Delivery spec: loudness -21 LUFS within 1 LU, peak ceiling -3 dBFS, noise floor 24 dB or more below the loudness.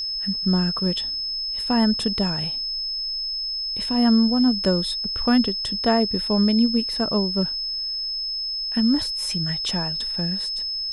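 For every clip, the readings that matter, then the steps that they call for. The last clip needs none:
steady tone 5200 Hz; tone level -25 dBFS; loudness -22.0 LUFS; peak -7.0 dBFS; loudness target -21.0 LUFS
-> notch 5200 Hz, Q 30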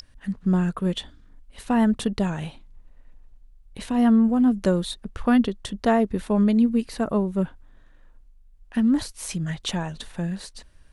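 steady tone none; loudness -23.5 LUFS; peak -7.5 dBFS; loudness target -21.0 LUFS
-> gain +2.5 dB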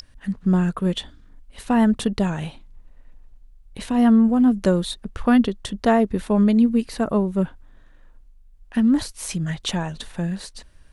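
loudness -21.0 LUFS; peak -5.0 dBFS; noise floor -50 dBFS

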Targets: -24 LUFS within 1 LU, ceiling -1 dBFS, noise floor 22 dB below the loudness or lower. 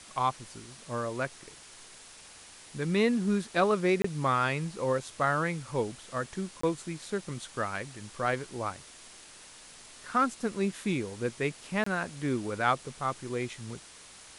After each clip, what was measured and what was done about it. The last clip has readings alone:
dropouts 3; longest dropout 24 ms; noise floor -51 dBFS; noise floor target -53 dBFS; loudness -31.0 LUFS; peak -12.5 dBFS; loudness target -24.0 LUFS
-> interpolate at 4.02/6.61/11.84, 24 ms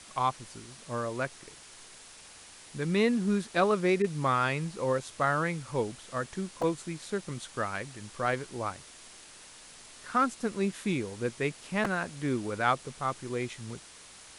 dropouts 0; noise floor -51 dBFS; noise floor target -53 dBFS
-> noise print and reduce 6 dB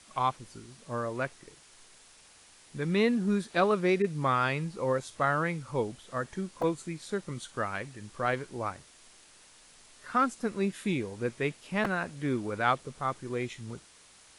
noise floor -57 dBFS; loudness -31.0 LUFS; peak -12.5 dBFS; loudness target -24.0 LUFS
-> gain +7 dB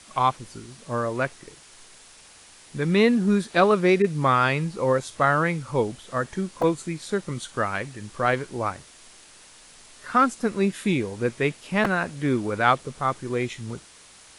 loudness -24.0 LUFS; peak -5.5 dBFS; noise floor -50 dBFS

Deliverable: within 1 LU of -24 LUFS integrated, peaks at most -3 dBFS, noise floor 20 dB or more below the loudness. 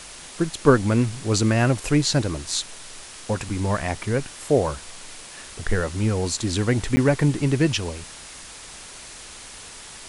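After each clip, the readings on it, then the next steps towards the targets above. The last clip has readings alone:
dropouts 1; longest dropout 10 ms; noise floor -41 dBFS; noise floor target -43 dBFS; loudness -22.5 LUFS; peak -3.0 dBFS; loudness target -24.0 LUFS
-> interpolate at 6.96, 10 ms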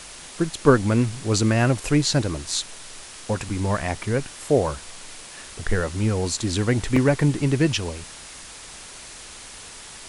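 dropouts 0; noise floor -41 dBFS; noise floor target -43 dBFS
-> denoiser 6 dB, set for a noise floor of -41 dBFS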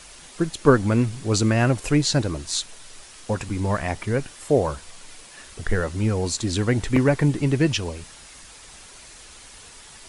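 noise floor -45 dBFS; loudness -22.5 LUFS; peak -3.0 dBFS; loudness target -24.0 LUFS
-> gain -1.5 dB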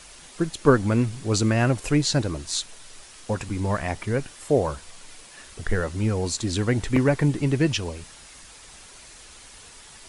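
loudness -24.0 LUFS; peak -4.5 dBFS; noise floor -47 dBFS

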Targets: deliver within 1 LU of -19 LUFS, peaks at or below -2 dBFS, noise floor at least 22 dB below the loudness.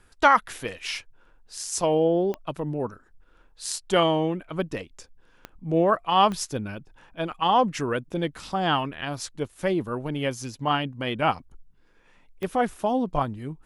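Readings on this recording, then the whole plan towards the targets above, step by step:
clicks 4; loudness -26.0 LUFS; peak -5.5 dBFS; loudness target -19.0 LUFS
-> de-click; gain +7 dB; limiter -2 dBFS

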